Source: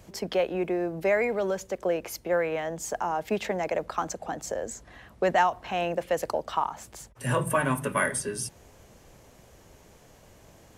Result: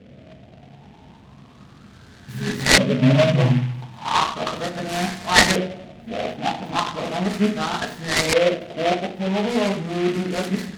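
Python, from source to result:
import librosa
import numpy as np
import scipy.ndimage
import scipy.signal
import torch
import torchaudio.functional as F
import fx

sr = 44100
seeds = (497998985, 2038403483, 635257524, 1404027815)

y = x[::-1].copy()
y = fx.graphic_eq_10(y, sr, hz=(125, 250, 500, 1000, 2000, 4000, 8000), db=(11, 8, -8, -5, 6, 10, 8))
y = fx.echo_split(y, sr, split_hz=1800.0, low_ms=96, high_ms=219, feedback_pct=52, wet_db=-15)
y = fx.dynamic_eq(y, sr, hz=1600.0, q=5.1, threshold_db=-51.0, ratio=4.0, max_db=-8)
y = scipy.signal.sosfilt(scipy.signal.butter(2, 56.0, 'highpass', fs=sr, output='sos'), y)
y = fx.room_shoebox(y, sr, seeds[0], volume_m3=180.0, walls='furnished', distance_m=1.5)
y = fx.filter_lfo_lowpass(y, sr, shape='saw_up', hz=0.36, low_hz=530.0, high_hz=2100.0, q=6.2)
y = fx.noise_mod_delay(y, sr, seeds[1], noise_hz=2100.0, depth_ms=0.089)
y = y * librosa.db_to_amplitude(-1.0)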